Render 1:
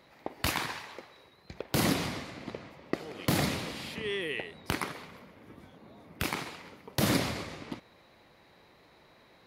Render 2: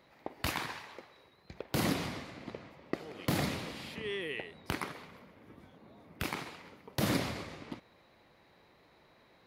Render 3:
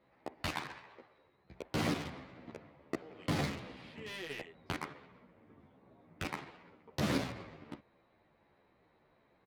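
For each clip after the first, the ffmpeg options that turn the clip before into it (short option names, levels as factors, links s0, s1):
-af "equalizer=f=9000:w=0.44:g=-3,volume=0.668"
-filter_complex "[0:a]asplit=2[s0][s1];[s1]acrusher=bits=4:mix=0:aa=0.000001,volume=0.531[s2];[s0][s2]amix=inputs=2:normalize=0,adynamicsmooth=sensitivity=7.5:basefreq=2800,asplit=2[s3][s4];[s4]adelay=11.7,afreqshift=-1.4[s5];[s3][s5]amix=inputs=2:normalize=1,volume=0.75"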